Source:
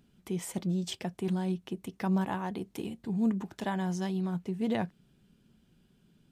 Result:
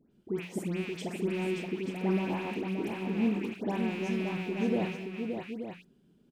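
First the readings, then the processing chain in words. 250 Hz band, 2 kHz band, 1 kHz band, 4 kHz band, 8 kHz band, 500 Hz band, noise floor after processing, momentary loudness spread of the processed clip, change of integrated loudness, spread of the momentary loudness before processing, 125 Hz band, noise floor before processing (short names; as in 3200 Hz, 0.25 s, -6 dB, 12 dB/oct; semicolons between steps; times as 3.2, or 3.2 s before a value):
0.0 dB, +5.0 dB, -1.5 dB, 0.0 dB, n/a, +5.0 dB, -65 dBFS, 8 LU, 0.0 dB, 8 LU, -2.0 dB, -68 dBFS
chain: rattling part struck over -42 dBFS, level -24 dBFS; bell 360 Hz +12.5 dB 2 oct; notches 60/120/180 Hz; dispersion highs, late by 0.119 s, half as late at 1800 Hz; on a send: tapped delay 51/221/575/882 ms -10.5/-17.5/-5.5/-9 dB; on the sum: gain -8.5 dB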